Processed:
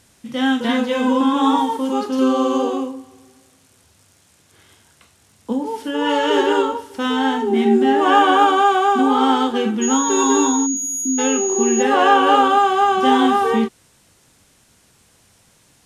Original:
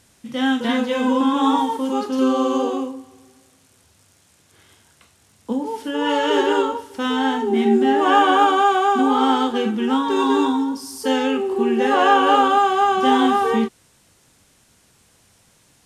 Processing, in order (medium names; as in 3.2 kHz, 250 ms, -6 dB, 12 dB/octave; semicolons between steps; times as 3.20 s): 10.66–11.19 s: spectral selection erased 380–9500 Hz; 9.81–11.81 s: whistle 6.7 kHz -23 dBFS; trim +1.5 dB